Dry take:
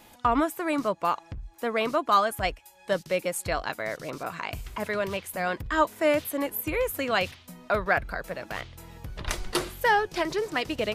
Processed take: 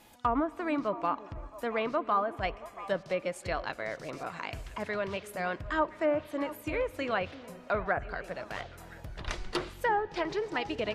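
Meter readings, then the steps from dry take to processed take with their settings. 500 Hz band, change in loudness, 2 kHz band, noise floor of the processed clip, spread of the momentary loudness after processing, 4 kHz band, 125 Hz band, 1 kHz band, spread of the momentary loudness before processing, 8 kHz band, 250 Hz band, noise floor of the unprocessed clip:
-4.5 dB, -5.5 dB, -6.5 dB, -51 dBFS, 10 LU, -8.0 dB, -4.5 dB, -5.0 dB, 12 LU, -13.5 dB, -4.0 dB, -55 dBFS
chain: low-pass that closes with the level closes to 1.2 kHz, closed at -18.5 dBFS; on a send: repeats whose band climbs or falls 339 ms, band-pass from 320 Hz, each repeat 1.4 oct, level -10.5 dB; on the sum: spring tank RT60 3.3 s, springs 45/52 ms, chirp 40 ms, DRR 19.5 dB; trim -4.5 dB

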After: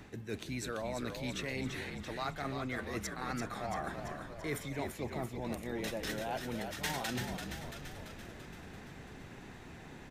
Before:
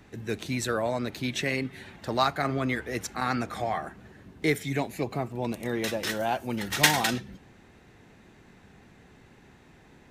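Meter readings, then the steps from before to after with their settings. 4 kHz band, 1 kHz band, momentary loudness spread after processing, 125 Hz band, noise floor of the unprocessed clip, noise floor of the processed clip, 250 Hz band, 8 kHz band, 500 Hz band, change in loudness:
-11.5 dB, -10.5 dB, 12 LU, -7.5 dB, -56 dBFS, -51 dBFS, -8.5 dB, -11.0 dB, -9.0 dB, -10.5 dB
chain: reverse; compression 5:1, threshold -41 dBFS, peak gain reduction 23.5 dB; reverse; frequency-shifting echo 338 ms, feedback 61%, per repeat -51 Hz, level -6.5 dB; trim +3.5 dB

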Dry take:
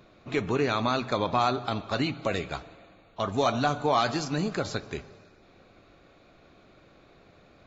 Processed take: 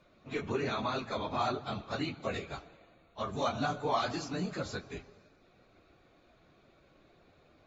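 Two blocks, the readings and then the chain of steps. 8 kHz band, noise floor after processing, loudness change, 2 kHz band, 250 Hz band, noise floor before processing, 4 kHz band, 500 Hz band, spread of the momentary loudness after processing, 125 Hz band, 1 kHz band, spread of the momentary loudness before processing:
no reading, -65 dBFS, -7.0 dB, -6.5 dB, -7.5 dB, -58 dBFS, -7.0 dB, -7.5 dB, 11 LU, -7.5 dB, -7.0 dB, 10 LU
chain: phase randomisation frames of 50 ms; trim -7 dB

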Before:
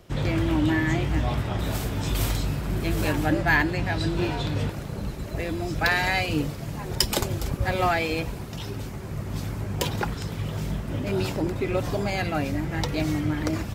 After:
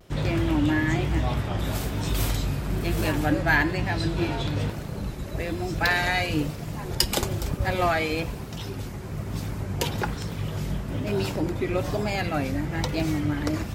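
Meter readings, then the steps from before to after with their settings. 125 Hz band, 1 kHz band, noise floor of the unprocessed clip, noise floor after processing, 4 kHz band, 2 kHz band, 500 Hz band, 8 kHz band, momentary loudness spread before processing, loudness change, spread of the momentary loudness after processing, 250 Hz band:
0.0 dB, -0.5 dB, -35 dBFS, -35 dBFS, 0.0 dB, 0.0 dB, 0.0 dB, 0.0 dB, 10 LU, 0.0 dB, 10 LU, 0.0 dB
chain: de-hum 113.1 Hz, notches 30; vibrato 1.1 Hz 61 cents

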